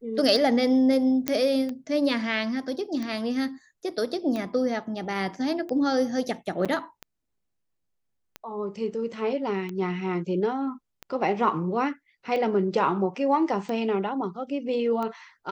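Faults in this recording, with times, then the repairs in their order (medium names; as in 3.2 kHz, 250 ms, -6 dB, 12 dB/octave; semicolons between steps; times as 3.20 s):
tick 45 rpm
1.28 s: pop -8 dBFS
6.65–6.66 s: dropout 6.3 ms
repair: de-click; interpolate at 6.65 s, 6.3 ms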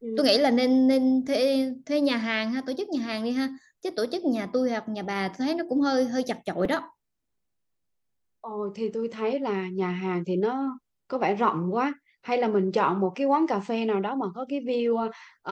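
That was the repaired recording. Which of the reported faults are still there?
nothing left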